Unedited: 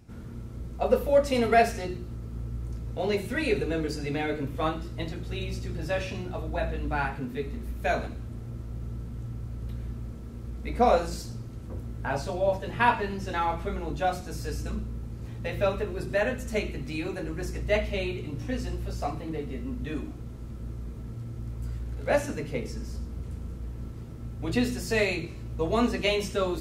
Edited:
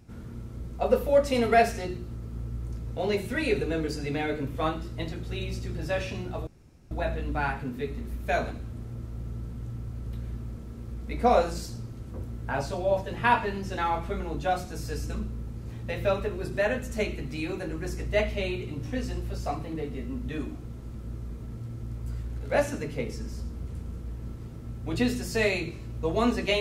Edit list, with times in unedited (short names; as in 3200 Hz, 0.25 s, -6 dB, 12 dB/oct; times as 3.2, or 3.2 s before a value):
6.47 insert room tone 0.44 s